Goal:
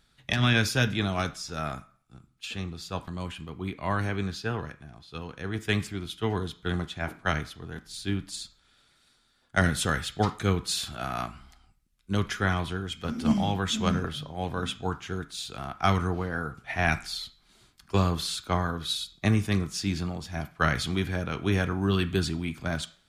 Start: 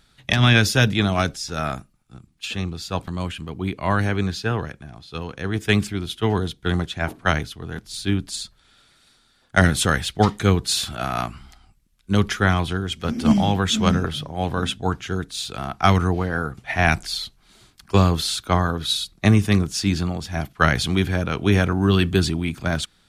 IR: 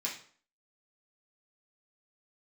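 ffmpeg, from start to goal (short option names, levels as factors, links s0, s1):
-filter_complex "[0:a]asplit=2[s0][s1];[s1]equalizer=f=1300:w=1.6:g=9[s2];[1:a]atrim=start_sample=2205,adelay=9[s3];[s2][s3]afir=irnorm=-1:irlink=0,volume=0.15[s4];[s0][s4]amix=inputs=2:normalize=0,volume=0.422"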